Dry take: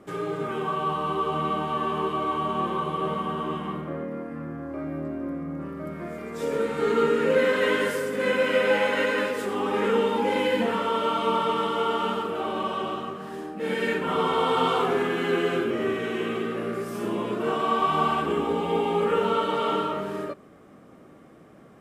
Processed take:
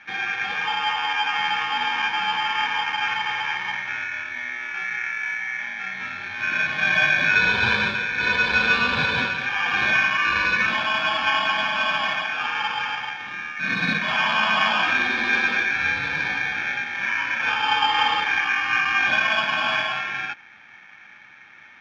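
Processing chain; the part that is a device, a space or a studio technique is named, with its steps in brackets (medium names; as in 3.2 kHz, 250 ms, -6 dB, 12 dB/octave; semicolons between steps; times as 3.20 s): ring modulator pedal into a guitar cabinet (polarity switched at an audio rate 2 kHz; cabinet simulation 96–3400 Hz, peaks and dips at 220 Hz +3 dB, 430 Hz -10 dB, 640 Hz -7 dB, 1.5 kHz -3 dB, 2.8 kHz -8 dB); trim +7 dB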